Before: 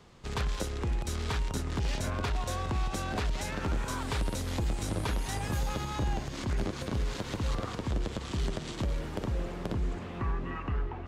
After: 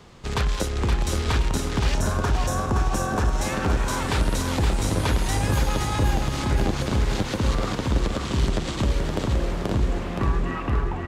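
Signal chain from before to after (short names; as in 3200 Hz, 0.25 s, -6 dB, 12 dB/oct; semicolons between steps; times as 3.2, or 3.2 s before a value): spectral gain 1.95–3.42, 1800–5200 Hz -9 dB; on a send: feedback echo 0.52 s, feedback 45%, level -5 dB; on the sum: gain +8 dB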